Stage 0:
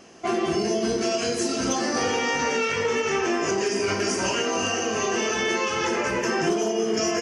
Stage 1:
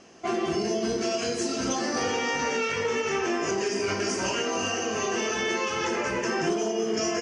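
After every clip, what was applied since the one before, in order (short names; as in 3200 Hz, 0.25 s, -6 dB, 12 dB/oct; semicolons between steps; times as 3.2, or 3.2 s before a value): LPF 8700 Hz 24 dB/oct; gain -3 dB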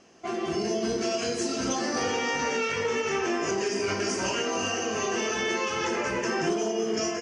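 AGC gain up to 4 dB; gain -4.5 dB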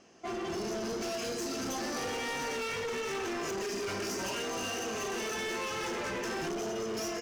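hard clip -30 dBFS, distortion -8 dB; gain -3 dB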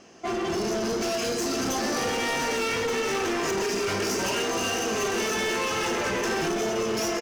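echo 1.178 s -10 dB; gain +8 dB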